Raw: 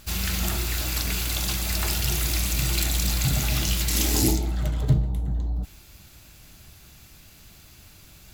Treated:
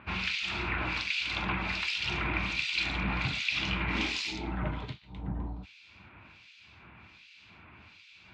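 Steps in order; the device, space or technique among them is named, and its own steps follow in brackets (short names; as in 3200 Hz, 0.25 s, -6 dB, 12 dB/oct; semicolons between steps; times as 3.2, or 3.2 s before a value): HPF 61 Hz; guitar amplifier with harmonic tremolo (harmonic tremolo 1.3 Hz, depth 100%, crossover 2300 Hz; soft clip -17.5 dBFS, distortion -22 dB; speaker cabinet 96–3900 Hz, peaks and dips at 140 Hz -8 dB, 980 Hz +9 dB, 1400 Hz +3 dB, 2400 Hz +10 dB); bell 550 Hz -4 dB 1.1 oct; gain +3 dB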